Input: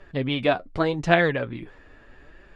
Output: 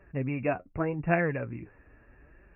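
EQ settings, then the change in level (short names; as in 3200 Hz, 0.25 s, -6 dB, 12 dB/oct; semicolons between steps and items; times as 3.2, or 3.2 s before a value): HPF 41 Hz; brick-wall FIR low-pass 2800 Hz; low shelf 190 Hz +9 dB; -8.5 dB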